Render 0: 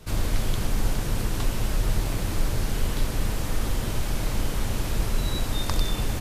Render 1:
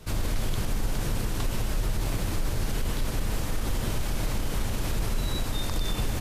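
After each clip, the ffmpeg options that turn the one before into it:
-af "alimiter=limit=-18.5dB:level=0:latency=1:release=50"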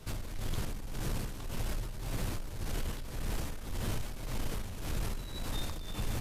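-af "asoftclip=type=tanh:threshold=-22dB,flanger=delay=7.6:depth=8.3:regen=73:speed=0.47:shape=sinusoidal,tremolo=f=1.8:d=0.62,volume=1dB"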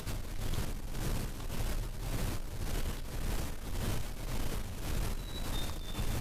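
-af "acompressor=mode=upward:threshold=-36dB:ratio=2.5"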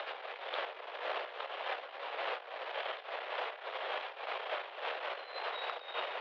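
-af "tremolo=f=3.5:d=0.45,highpass=f=360:t=q:w=0.5412,highpass=f=360:t=q:w=1.307,lowpass=f=3.3k:t=q:w=0.5176,lowpass=f=3.3k:t=q:w=0.7071,lowpass=f=3.3k:t=q:w=1.932,afreqshift=170,volume=9dB"

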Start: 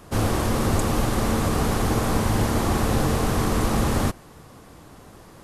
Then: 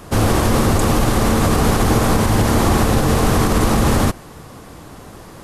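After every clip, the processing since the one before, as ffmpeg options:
-af "alimiter=level_in=13dB:limit=-1dB:release=50:level=0:latency=1,volume=-4.5dB"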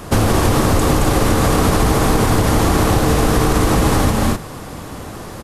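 -filter_complex "[0:a]asplit=2[a][b];[b]aecho=0:1:221.6|253.6:0.501|0.398[c];[a][c]amix=inputs=2:normalize=0,acompressor=threshold=-16dB:ratio=6,volume=5.5dB"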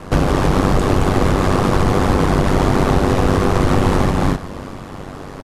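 -af "aemphasis=mode=reproduction:type=50fm,aecho=1:1:381:0.141,aeval=exprs='val(0)*sin(2*PI*48*n/s)':c=same,volume=2dB"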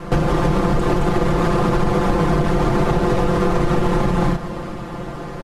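-af "highshelf=f=3.8k:g=-6,aecho=1:1:5.8:0.92,acompressor=threshold=-13dB:ratio=6"

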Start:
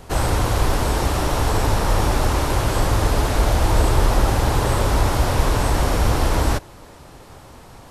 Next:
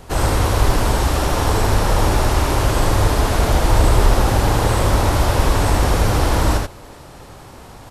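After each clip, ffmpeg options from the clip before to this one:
-af "areverse,acompressor=mode=upward:threshold=-37dB:ratio=2.5,areverse,aecho=1:1:80:0.668,volume=1dB"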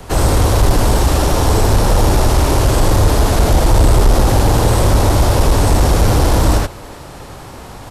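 -filter_complex "[0:a]acrossover=split=160|860|3600[a][b][c][d];[c]alimiter=level_in=1.5dB:limit=-24dB:level=0:latency=1,volume=-1.5dB[e];[a][b][e][d]amix=inputs=4:normalize=0,acontrast=89,volume=-1dB"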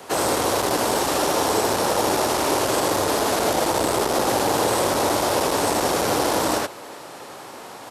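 -af "highpass=320,volume=-2.5dB"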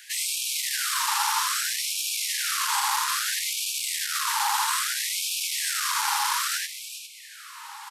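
-af "aecho=1:1:407:0.335,afftfilt=real='re*gte(b*sr/1024,780*pow(2300/780,0.5+0.5*sin(2*PI*0.61*pts/sr)))':imag='im*gte(b*sr/1024,780*pow(2300/780,0.5+0.5*sin(2*PI*0.61*pts/sr)))':win_size=1024:overlap=0.75"

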